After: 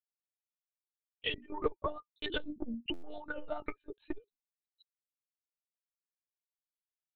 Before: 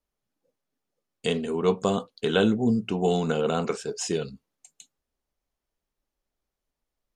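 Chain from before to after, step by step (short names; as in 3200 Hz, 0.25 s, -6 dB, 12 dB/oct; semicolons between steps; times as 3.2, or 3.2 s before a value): per-bin expansion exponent 3; dynamic EQ 450 Hz, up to +4 dB, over -40 dBFS, Q 0.78; compressor 4:1, threshold -34 dBFS, peak gain reduction 15 dB; transient shaper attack +7 dB, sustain -5 dB; limiter -23.5 dBFS, peak gain reduction 9 dB; rippled Chebyshev high-pass 230 Hz, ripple 3 dB; monotone LPC vocoder at 8 kHz 300 Hz; stuck buffer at 2.93, samples 512, times 8; core saturation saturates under 130 Hz; gain +7 dB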